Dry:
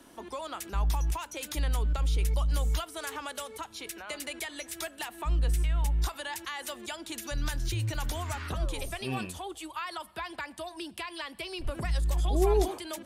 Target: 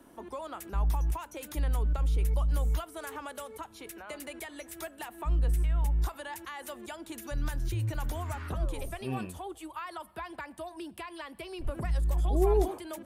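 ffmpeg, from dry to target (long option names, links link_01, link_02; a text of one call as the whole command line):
ffmpeg -i in.wav -af "equalizer=frequency=4600:width_type=o:width=2.4:gain=-10.5" out.wav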